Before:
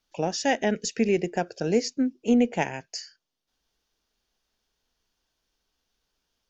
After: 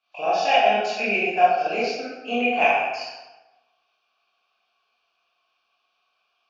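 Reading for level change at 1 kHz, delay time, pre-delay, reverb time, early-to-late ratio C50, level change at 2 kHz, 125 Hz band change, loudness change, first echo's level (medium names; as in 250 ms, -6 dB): +12.5 dB, no echo, 19 ms, 1.1 s, -1.5 dB, +10.0 dB, under -10 dB, +4.5 dB, no echo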